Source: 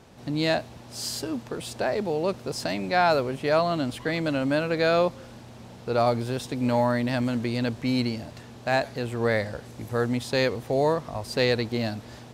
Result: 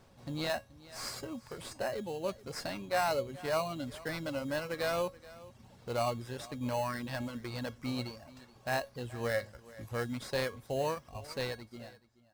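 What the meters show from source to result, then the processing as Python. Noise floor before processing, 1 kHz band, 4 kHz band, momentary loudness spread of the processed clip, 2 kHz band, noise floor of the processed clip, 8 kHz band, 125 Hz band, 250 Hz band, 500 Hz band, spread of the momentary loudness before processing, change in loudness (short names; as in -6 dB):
-45 dBFS, -9.5 dB, -9.5 dB, 15 LU, -9.5 dB, -61 dBFS, -6.5 dB, -11.0 dB, -13.0 dB, -10.5 dB, 12 LU, -10.5 dB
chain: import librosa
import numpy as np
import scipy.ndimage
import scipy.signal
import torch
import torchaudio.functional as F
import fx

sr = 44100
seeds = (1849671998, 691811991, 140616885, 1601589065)

p1 = fx.fade_out_tail(x, sr, length_s=1.28)
p2 = fx.dereverb_blind(p1, sr, rt60_s=1.2)
p3 = fx.peak_eq(p2, sr, hz=340.0, db=-6.0, octaves=2.4)
p4 = fx.sample_hold(p3, sr, seeds[0], rate_hz=3500.0, jitter_pct=0)
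p5 = p3 + (p4 * 10.0 ** (-3.0 / 20.0))
p6 = fx.comb_fb(p5, sr, f0_hz=550.0, decay_s=0.2, harmonics='all', damping=0.0, mix_pct=70)
y = p6 + fx.echo_single(p6, sr, ms=428, db=-19.5, dry=0)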